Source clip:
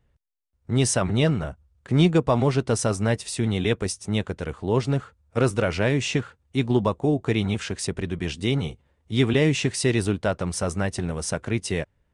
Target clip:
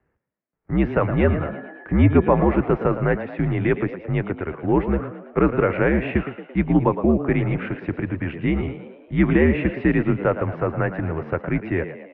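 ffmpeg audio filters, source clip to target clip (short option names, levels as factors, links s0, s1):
-filter_complex "[0:a]highpass=f=160:t=q:w=0.5412,highpass=f=160:t=q:w=1.307,lowpass=f=2300:t=q:w=0.5176,lowpass=f=2300:t=q:w=0.7071,lowpass=f=2300:t=q:w=1.932,afreqshift=-74,asettb=1/sr,asplit=3[s0][s1][s2];[s0]atrim=end=1.114[s3];[s1]atrim=start=1.11:end=2.54,asetpts=PTS-STARTPTS,afade=t=in:d=0.004:c=qsin,afade=t=out:st=1.426:d=0.004:c=qsin,aeval=exprs='val(0)+0.00447*sin(2*PI*1700*n/s)':c=same[s4];[s2]atrim=start=2.536[s5];[s3][s4]acrossfade=d=0.004:c1=hsin:c2=qsin[s6];[s6][s5]acrossfade=d=0.004:c1=qsin:c2=hsin,asplit=7[s7][s8][s9][s10][s11][s12][s13];[s8]adelay=112,afreqshift=59,volume=0.266[s14];[s9]adelay=224,afreqshift=118,volume=0.138[s15];[s10]adelay=336,afreqshift=177,volume=0.0716[s16];[s11]adelay=448,afreqshift=236,volume=0.0376[s17];[s12]adelay=560,afreqshift=295,volume=0.0195[s18];[s13]adelay=672,afreqshift=354,volume=0.0101[s19];[s7][s14][s15][s16][s17][s18][s19]amix=inputs=7:normalize=0,volume=1.68"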